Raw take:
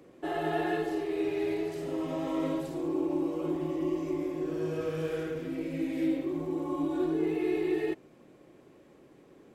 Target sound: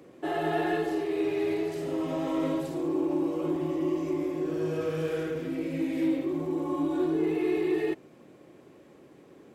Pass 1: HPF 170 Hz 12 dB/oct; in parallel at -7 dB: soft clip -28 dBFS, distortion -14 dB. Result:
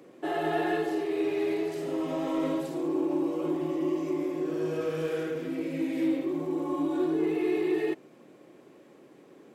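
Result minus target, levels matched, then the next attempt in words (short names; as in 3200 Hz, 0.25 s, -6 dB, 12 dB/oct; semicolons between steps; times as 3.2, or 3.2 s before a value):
125 Hz band -3.5 dB
HPF 65 Hz 12 dB/oct; in parallel at -7 dB: soft clip -28 dBFS, distortion -14 dB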